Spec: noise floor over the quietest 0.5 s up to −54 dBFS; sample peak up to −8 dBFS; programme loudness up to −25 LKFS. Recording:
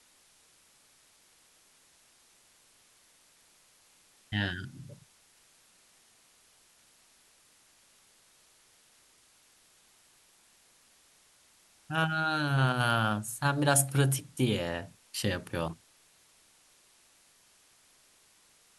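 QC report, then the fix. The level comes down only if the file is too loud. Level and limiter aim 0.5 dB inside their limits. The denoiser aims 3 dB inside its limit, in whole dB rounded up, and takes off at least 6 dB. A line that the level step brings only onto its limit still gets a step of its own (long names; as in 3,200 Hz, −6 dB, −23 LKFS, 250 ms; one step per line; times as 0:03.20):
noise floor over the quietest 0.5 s −64 dBFS: in spec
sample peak −9.5 dBFS: in spec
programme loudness −29.5 LKFS: in spec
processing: no processing needed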